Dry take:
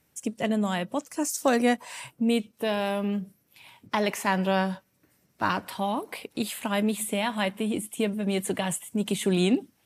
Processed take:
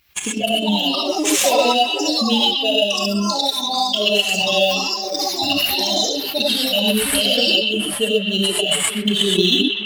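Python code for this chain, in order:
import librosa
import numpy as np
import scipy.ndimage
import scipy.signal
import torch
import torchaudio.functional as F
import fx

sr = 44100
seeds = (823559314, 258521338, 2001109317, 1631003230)

p1 = fx.bin_expand(x, sr, power=2.0)
p2 = fx.brickwall_bandstop(p1, sr, low_hz=760.0, high_hz=2600.0)
p3 = fx.low_shelf(p2, sr, hz=310.0, db=-10.5)
p4 = fx.rev_gated(p3, sr, seeds[0], gate_ms=150, shape='rising', drr_db=-4.5)
p5 = fx.sample_hold(p4, sr, seeds[1], rate_hz=9900.0, jitter_pct=0)
p6 = p4 + F.gain(torch.from_numpy(p5), -9.0).numpy()
p7 = fx.peak_eq(p6, sr, hz=2800.0, db=12.5, octaves=2.3)
p8 = fx.transient(p7, sr, attack_db=6, sustain_db=-3)
p9 = p8 + fx.echo_stepped(p8, sr, ms=123, hz=3200.0, octaves=-0.7, feedback_pct=70, wet_db=-8, dry=0)
p10 = fx.echo_pitch(p9, sr, ms=348, semitones=5, count=2, db_per_echo=-6.0)
y = fx.env_flatten(p10, sr, amount_pct=50)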